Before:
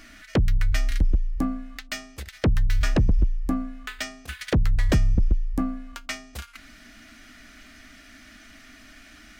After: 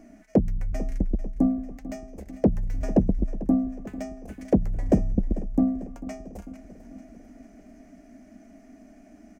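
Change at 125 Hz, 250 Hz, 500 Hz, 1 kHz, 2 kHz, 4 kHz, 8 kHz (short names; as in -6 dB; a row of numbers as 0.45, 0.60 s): -4.5 dB, +5.0 dB, +4.5 dB, -2.5 dB, under -15 dB, under -20 dB, under -10 dB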